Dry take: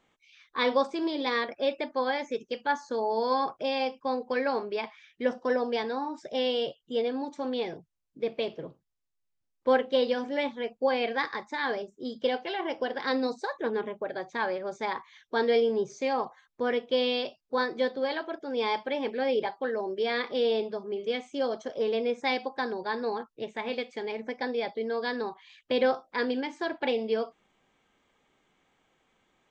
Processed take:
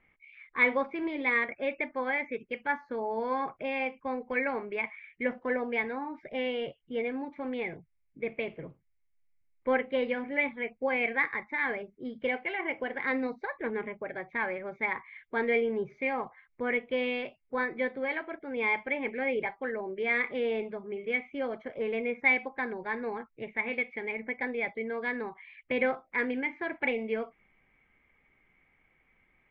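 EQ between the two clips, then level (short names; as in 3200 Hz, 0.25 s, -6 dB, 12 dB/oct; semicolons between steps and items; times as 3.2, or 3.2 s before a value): ladder low-pass 2300 Hz, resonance 80%; low shelf 97 Hz +9.5 dB; low shelf 200 Hz +8 dB; +6.0 dB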